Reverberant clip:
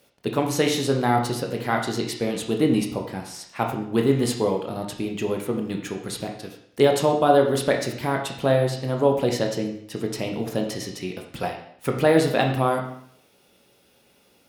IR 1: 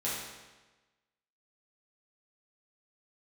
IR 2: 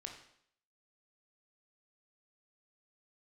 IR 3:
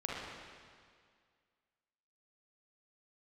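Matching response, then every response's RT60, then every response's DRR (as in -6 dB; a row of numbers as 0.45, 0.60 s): 2; 1.2, 0.65, 2.0 s; -8.5, 2.0, -5.0 dB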